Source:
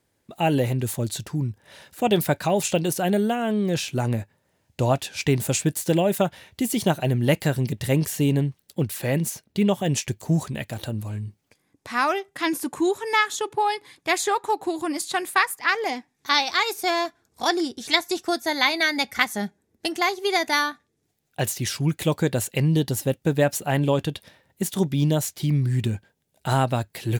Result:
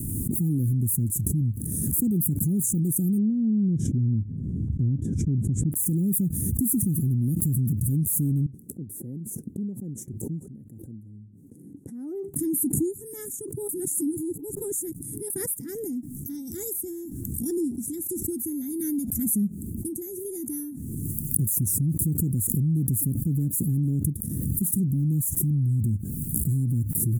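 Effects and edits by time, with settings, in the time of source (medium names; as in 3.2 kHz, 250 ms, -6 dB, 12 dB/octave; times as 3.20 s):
3.18–5.72 s: tape spacing loss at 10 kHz 40 dB
8.46–12.34 s: band-pass filter 690 Hz, Q 2.2
13.69–15.30 s: reverse
whole clip: inverse Chebyshev band-stop 610–4600 Hz, stop band 50 dB; loudness maximiser +24.5 dB; swell ahead of each attack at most 22 dB/s; trim -17.5 dB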